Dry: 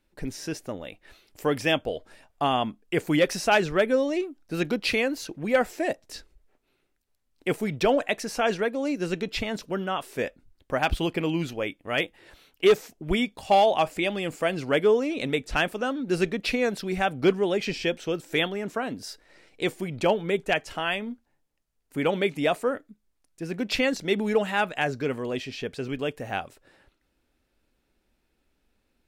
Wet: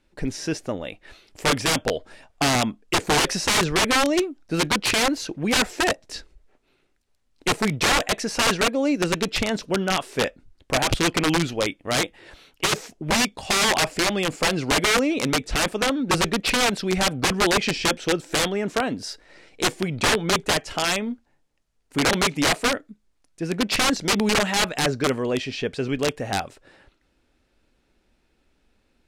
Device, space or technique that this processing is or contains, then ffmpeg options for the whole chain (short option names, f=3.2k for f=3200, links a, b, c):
overflowing digital effects unit: -af "aeval=exprs='(mod(9.44*val(0)+1,2)-1)/9.44':c=same,lowpass=8.8k,volume=6dB"